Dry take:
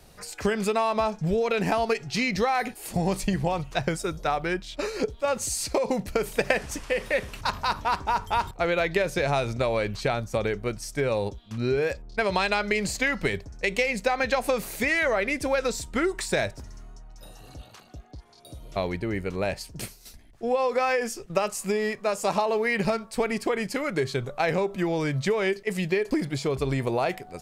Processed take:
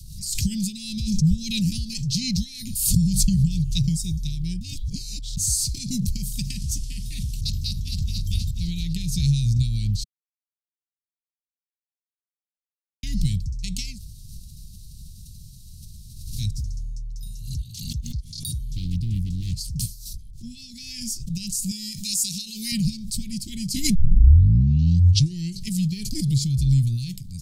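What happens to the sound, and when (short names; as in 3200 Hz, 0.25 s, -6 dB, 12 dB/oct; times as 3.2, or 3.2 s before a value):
4.61–5.37 reverse
7.49–8.34 echo throw 0.49 s, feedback 40%, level -8.5 dB
10.04–13.03 mute
13.94–16.43 room tone, crossfade 0.10 s
18.65–19.71 Doppler distortion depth 0.89 ms
21.71–22.72 tilt +2.5 dB/oct
23.95 tape start 1.70 s
whole clip: inverse Chebyshev band-stop 490–1400 Hz, stop band 70 dB; low shelf 370 Hz +7 dB; backwards sustainer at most 54 dB/s; gain +6.5 dB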